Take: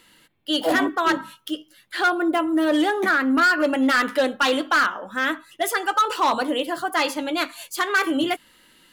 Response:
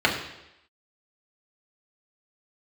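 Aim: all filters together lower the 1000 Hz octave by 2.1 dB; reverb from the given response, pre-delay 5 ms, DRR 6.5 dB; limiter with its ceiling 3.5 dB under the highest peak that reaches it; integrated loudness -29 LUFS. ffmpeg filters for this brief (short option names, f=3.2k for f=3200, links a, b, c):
-filter_complex "[0:a]equalizer=f=1k:t=o:g=-3,alimiter=limit=-16.5dB:level=0:latency=1,asplit=2[a][b];[1:a]atrim=start_sample=2205,adelay=5[c];[b][c]afir=irnorm=-1:irlink=0,volume=-24dB[d];[a][d]amix=inputs=2:normalize=0,volume=-5.5dB"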